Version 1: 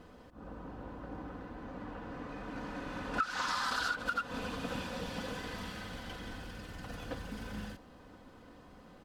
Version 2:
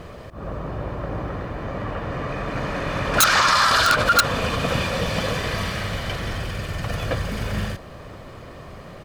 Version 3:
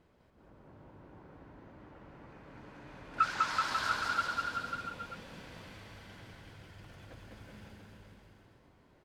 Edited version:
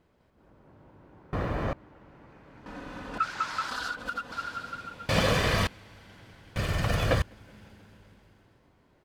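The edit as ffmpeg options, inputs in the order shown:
-filter_complex "[1:a]asplit=3[s0][s1][s2];[0:a]asplit=2[s3][s4];[2:a]asplit=6[s5][s6][s7][s8][s9][s10];[s5]atrim=end=1.332[s11];[s0]atrim=start=1.328:end=1.732[s12];[s6]atrim=start=1.728:end=2.662[s13];[s3]atrim=start=2.658:end=3.182[s14];[s7]atrim=start=3.178:end=3.692[s15];[s4]atrim=start=3.688:end=4.322[s16];[s8]atrim=start=4.318:end=5.092[s17];[s1]atrim=start=5.088:end=5.672[s18];[s9]atrim=start=5.668:end=6.562[s19];[s2]atrim=start=6.558:end=7.222[s20];[s10]atrim=start=7.218[s21];[s11][s12]acrossfade=d=0.004:c1=hsin:c2=hsin[s22];[s22][s13]acrossfade=d=0.004:c1=hsin:c2=hsin[s23];[s23][s14]acrossfade=d=0.004:c1=hsin:c2=hsin[s24];[s24][s15]acrossfade=d=0.004:c1=hsin:c2=hsin[s25];[s25][s16]acrossfade=d=0.004:c1=hsin:c2=hsin[s26];[s26][s17]acrossfade=d=0.004:c1=hsin:c2=hsin[s27];[s27][s18]acrossfade=d=0.004:c1=hsin:c2=hsin[s28];[s28][s19]acrossfade=d=0.004:c1=hsin:c2=hsin[s29];[s29][s20]acrossfade=d=0.004:c1=hsin:c2=hsin[s30];[s30][s21]acrossfade=d=0.004:c1=hsin:c2=hsin"

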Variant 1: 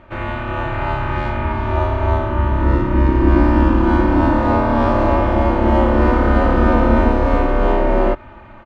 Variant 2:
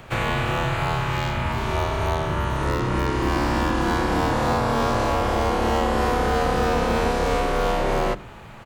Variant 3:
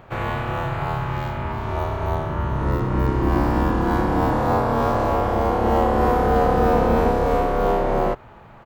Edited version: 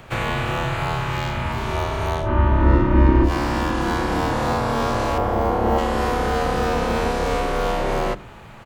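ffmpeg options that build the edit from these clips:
-filter_complex "[1:a]asplit=3[s0][s1][s2];[s0]atrim=end=2.29[s3];[0:a]atrim=start=2.19:end=3.32[s4];[s1]atrim=start=3.22:end=5.182[s5];[2:a]atrim=start=5.178:end=5.782[s6];[s2]atrim=start=5.778[s7];[s3][s4]acrossfade=d=0.1:c1=tri:c2=tri[s8];[s8][s5]acrossfade=d=0.1:c1=tri:c2=tri[s9];[s9][s6]acrossfade=d=0.004:c1=hsin:c2=hsin[s10];[s10][s7]acrossfade=d=0.004:c1=hsin:c2=hsin"

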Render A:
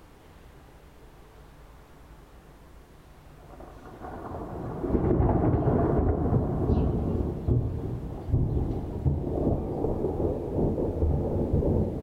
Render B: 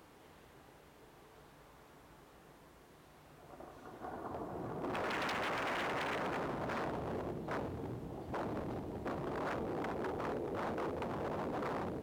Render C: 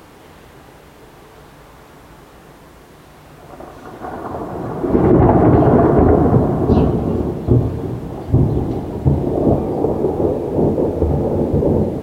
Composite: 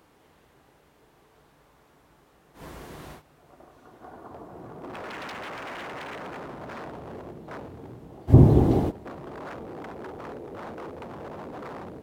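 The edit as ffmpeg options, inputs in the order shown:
-filter_complex "[2:a]asplit=2[s0][s1];[1:a]asplit=3[s2][s3][s4];[s2]atrim=end=2.64,asetpts=PTS-STARTPTS[s5];[s0]atrim=start=2.54:end=3.22,asetpts=PTS-STARTPTS[s6];[s3]atrim=start=3.12:end=8.31,asetpts=PTS-STARTPTS[s7];[s1]atrim=start=8.27:end=8.92,asetpts=PTS-STARTPTS[s8];[s4]atrim=start=8.88,asetpts=PTS-STARTPTS[s9];[s5][s6]acrossfade=d=0.1:c1=tri:c2=tri[s10];[s10][s7]acrossfade=d=0.1:c1=tri:c2=tri[s11];[s11][s8]acrossfade=d=0.04:c1=tri:c2=tri[s12];[s12][s9]acrossfade=d=0.04:c1=tri:c2=tri"

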